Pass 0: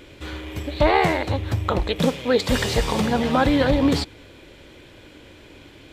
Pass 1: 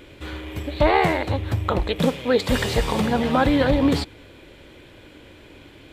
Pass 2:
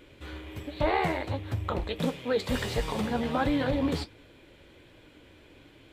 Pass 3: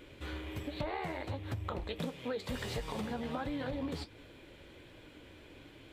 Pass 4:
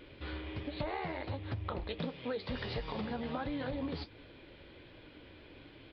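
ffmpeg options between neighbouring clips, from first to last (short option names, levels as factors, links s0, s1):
-af "equalizer=f=5800:w=1.4:g=-4.5"
-af "flanger=delay=6.3:depth=6.3:regen=-49:speed=1.4:shape=sinusoidal,volume=0.596"
-af "acompressor=threshold=0.0178:ratio=6"
-af "aresample=11025,aresample=44100"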